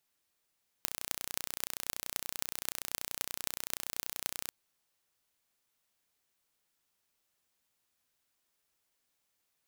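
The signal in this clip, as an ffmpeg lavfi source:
ffmpeg -f lavfi -i "aevalsrc='0.631*eq(mod(n,1446),0)*(0.5+0.5*eq(mod(n,11568),0))':duration=3.65:sample_rate=44100" out.wav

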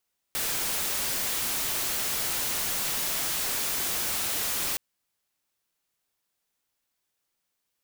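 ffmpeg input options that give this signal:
ffmpeg -f lavfi -i "anoisesrc=color=white:amplitude=0.0614:duration=4.42:sample_rate=44100:seed=1" out.wav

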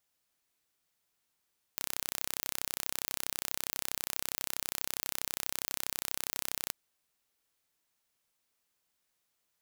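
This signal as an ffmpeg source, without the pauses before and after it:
ffmpeg -f lavfi -i "aevalsrc='0.473*eq(mod(n,1365),0)':duration=4.94:sample_rate=44100" out.wav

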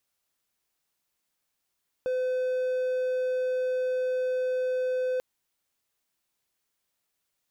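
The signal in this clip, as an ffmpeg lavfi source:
ffmpeg -f lavfi -i "aevalsrc='0.0708*(1-4*abs(mod(509*t+0.25,1)-0.5))':duration=3.14:sample_rate=44100" out.wav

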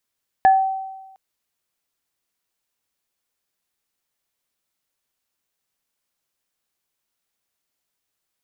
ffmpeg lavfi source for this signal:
ffmpeg -f lavfi -i "aevalsrc='0.398*pow(10,-3*t/1.13)*sin(2*PI*768*t)+0.112*pow(10,-3*t/0.24)*sin(2*PI*1720*t)':duration=0.71:sample_rate=44100" out.wav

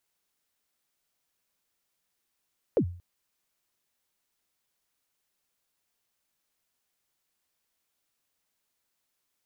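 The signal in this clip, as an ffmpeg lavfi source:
ffmpeg -f lavfi -i "aevalsrc='0.141*pow(10,-3*t/0.45)*sin(2*PI*(560*0.079/log(88/560)*(exp(log(88/560)*min(t,0.079)/0.079)-1)+88*max(t-0.079,0)))':duration=0.23:sample_rate=44100" out.wav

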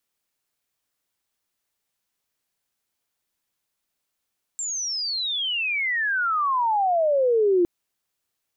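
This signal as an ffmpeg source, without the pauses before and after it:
ffmpeg -f lavfi -i "aevalsrc='pow(10,(-26+10.5*t/3.06)/20)*sin(2*PI*7500*3.06/log(340/7500)*(exp(log(340/7500)*t/3.06)-1))':duration=3.06:sample_rate=44100" out.wav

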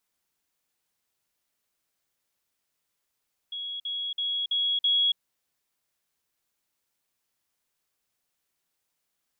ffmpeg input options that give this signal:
ffmpeg -f lavfi -i "aevalsrc='pow(10,(-32+3*floor(t/0.33))/20)*sin(2*PI*3330*t)*clip(min(mod(t,0.33),0.28-mod(t,0.33))/0.005,0,1)':duration=1.65:sample_rate=44100" out.wav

